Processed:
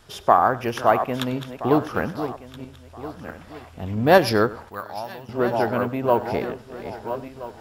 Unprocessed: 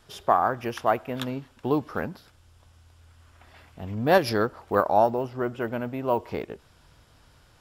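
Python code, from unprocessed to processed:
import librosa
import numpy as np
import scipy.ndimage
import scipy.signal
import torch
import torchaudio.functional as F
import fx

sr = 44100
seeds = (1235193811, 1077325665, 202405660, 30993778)

y = fx.reverse_delay_fb(x, sr, ms=662, feedback_pct=47, wet_db=-10.0)
y = fx.tone_stack(y, sr, knobs='5-5-5', at=(4.69, 5.29))
y = y + 10.0 ** (-18.5 / 20.0) * np.pad(y, (int(97 * sr / 1000.0), 0))[:len(y)]
y = y * 10.0 ** (5.0 / 20.0)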